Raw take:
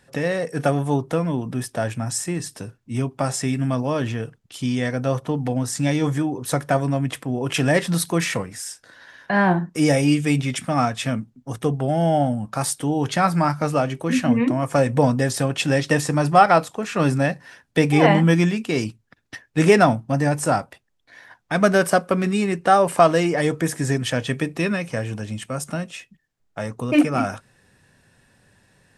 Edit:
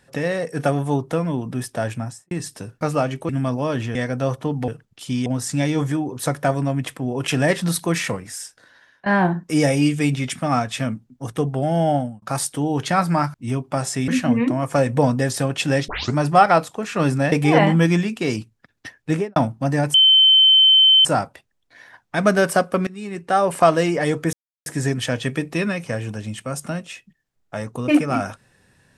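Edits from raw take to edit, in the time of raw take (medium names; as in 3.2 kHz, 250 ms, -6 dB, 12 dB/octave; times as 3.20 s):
1.95–2.31 s: studio fade out
2.81–3.55 s: swap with 13.60–14.08 s
4.21–4.79 s: move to 5.52 s
8.63–9.32 s: fade out, to -17.5 dB
12.21–12.48 s: fade out
15.88 s: tape start 0.27 s
17.32–17.80 s: delete
19.49–19.84 s: studio fade out
20.42 s: add tone 3.08 kHz -9 dBFS 1.11 s
22.24–22.95 s: fade in, from -21 dB
23.70 s: insert silence 0.33 s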